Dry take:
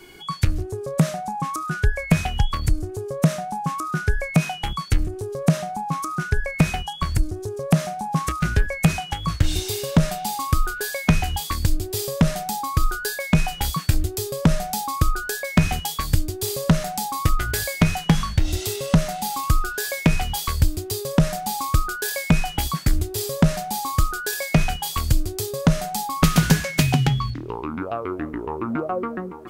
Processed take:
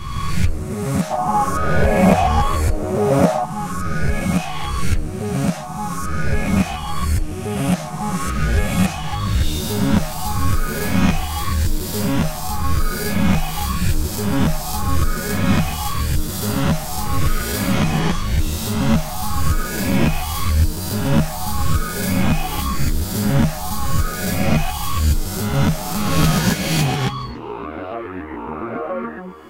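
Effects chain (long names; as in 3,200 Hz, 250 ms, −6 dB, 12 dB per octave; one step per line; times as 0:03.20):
peak hold with a rise ahead of every peak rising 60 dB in 1.58 s
0:01.10–0:03.44: parametric band 620 Hz +13.5 dB 1.9 octaves
string-ensemble chorus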